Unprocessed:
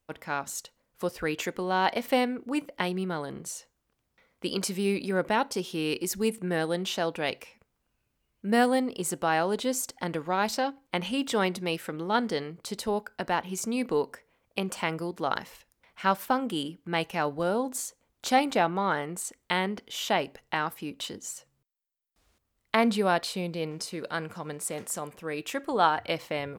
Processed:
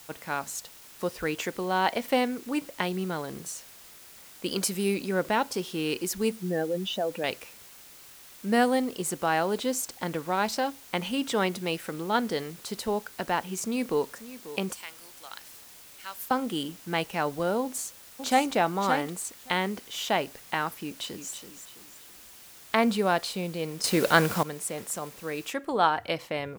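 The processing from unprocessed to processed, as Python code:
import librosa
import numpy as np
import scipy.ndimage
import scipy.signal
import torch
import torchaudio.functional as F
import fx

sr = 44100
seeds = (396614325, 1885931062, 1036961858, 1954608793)

y = fx.high_shelf(x, sr, hz=10000.0, db=11.5, at=(4.51, 4.94))
y = fx.spec_expand(y, sr, power=2.0, at=(6.31, 7.24))
y = fx.echo_throw(y, sr, start_s=13.61, length_s=0.43, ms=540, feedback_pct=55, wet_db=-15.0)
y = fx.differentiator(y, sr, at=(14.73, 16.31))
y = fx.echo_throw(y, sr, start_s=17.62, length_s=0.9, ms=570, feedback_pct=10, wet_db=-6.5)
y = fx.echo_throw(y, sr, start_s=20.8, length_s=0.52, ms=330, feedback_pct=40, wet_db=-9.5)
y = fx.noise_floor_step(y, sr, seeds[0], at_s=25.51, before_db=-50, after_db=-69, tilt_db=0.0)
y = fx.edit(y, sr, fx.clip_gain(start_s=23.84, length_s=0.59, db=12.0), tone=tone)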